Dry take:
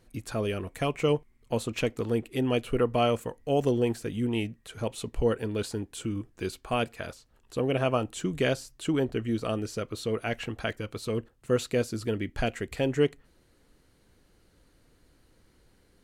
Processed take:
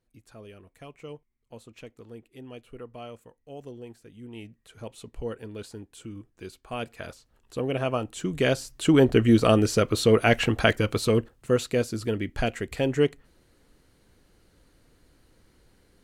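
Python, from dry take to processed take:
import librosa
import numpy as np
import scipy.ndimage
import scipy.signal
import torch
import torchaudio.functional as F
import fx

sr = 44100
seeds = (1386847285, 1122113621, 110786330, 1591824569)

y = fx.gain(x, sr, db=fx.line((4.15, -16.5), (4.6, -8.0), (6.62, -8.0), (7.04, -1.0), (8.11, -1.0), (9.17, 11.0), (10.94, 11.0), (11.59, 2.0)))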